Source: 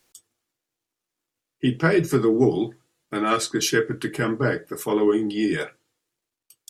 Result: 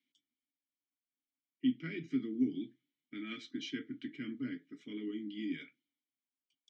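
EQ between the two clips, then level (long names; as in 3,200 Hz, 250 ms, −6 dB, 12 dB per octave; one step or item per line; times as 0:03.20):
formant filter i
loudspeaker in its box 130–5,700 Hz, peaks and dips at 340 Hz −4 dB, 500 Hz −4 dB, 1,100 Hz −3 dB, 1,700 Hz −4 dB, 2,600 Hz −7 dB, 4,600 Hz −6 dB
parametric band 540 Hz −10.5 dB 1.6 octaves
0.0 dB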